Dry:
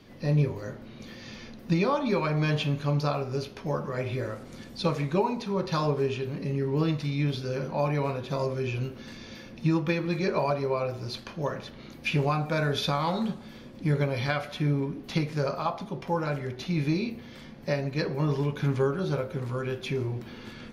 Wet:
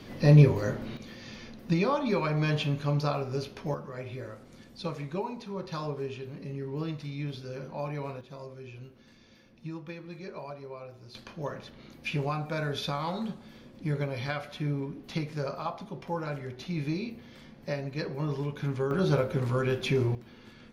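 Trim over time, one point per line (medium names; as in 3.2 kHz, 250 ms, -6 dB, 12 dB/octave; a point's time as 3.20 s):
+7 dB
from 0.97 s -1.5 dB
from 3.74 s -8 dB
from 8.21 s -14.5 dB
from 11.15 s -5 dB
from 18.91 s +3.5 dB
from 20.15 s -9 dB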